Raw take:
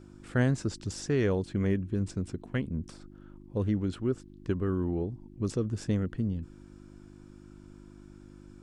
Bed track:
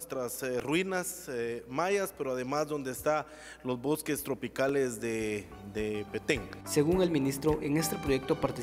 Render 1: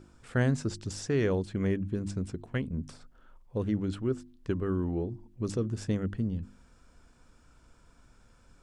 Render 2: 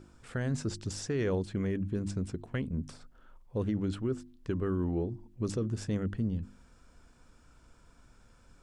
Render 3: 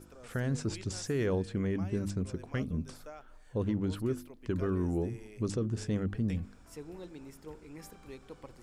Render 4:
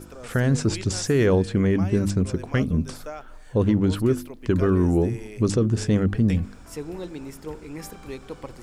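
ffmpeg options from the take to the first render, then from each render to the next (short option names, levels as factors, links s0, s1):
-af "bandreject=f=50:t=h:w=4,bandreject=f=100:t=h:w=4,bandreject=f=150:t=h:w=4,bandreject=f=200:t=h:w=4,bandreject=f=250:t=h:w=4,bandreject=f=300:t=h:w=4,bandreject=f=350:t=h:w=4"
-af "alimiter=limit=0.0708:level=0:latency=1:release=12"
-filter_complex "[1:a]volume=0.112[s0];[0:a][s0]amix=inputs=2:normalize=0"
-af "volume=3.76"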